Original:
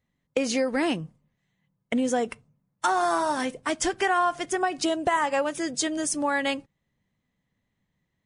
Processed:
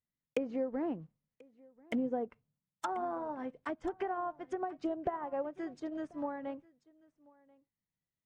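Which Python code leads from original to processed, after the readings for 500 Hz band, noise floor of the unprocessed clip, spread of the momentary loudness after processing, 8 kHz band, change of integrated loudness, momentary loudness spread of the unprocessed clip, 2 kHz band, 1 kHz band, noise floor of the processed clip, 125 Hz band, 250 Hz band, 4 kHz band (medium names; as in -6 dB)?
-10.0 dB, -79 dBFS, 7 LU, under -30 dB, -12.0 dB, 7 LU, -20.0 dB, -13.5 dB, under -85 dBFS, -11.5 dB, -9.5 dB, -25.0 dB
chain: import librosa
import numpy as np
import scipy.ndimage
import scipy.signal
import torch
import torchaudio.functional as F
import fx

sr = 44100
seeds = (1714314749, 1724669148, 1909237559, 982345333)

y = fx.block_float(x, sr, bits=5)
y = fx.env_lowpass_down(y, sr, base_hz=780.0, full_db=-22.5)
y = y + 10.0 ** (-17.0 / 20.0) * np.pad(y, (int(1037 * sr / 1000.0), 0))[:len(y)]
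y = fx.upward_expand(y, sr, threshold_db=-46.0, expansion=1.5)
y = y * 10.0 ** (-7.0 / 20.0)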